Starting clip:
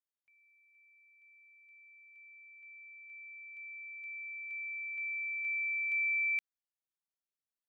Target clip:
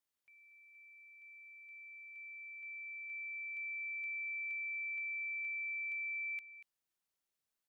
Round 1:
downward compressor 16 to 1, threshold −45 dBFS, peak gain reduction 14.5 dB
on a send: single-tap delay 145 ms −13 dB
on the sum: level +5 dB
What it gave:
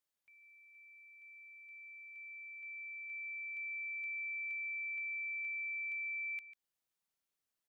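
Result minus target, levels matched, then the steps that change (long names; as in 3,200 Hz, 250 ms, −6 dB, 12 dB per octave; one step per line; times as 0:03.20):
echo 92 ms early
change: single-tap delay 237 ms −13 dB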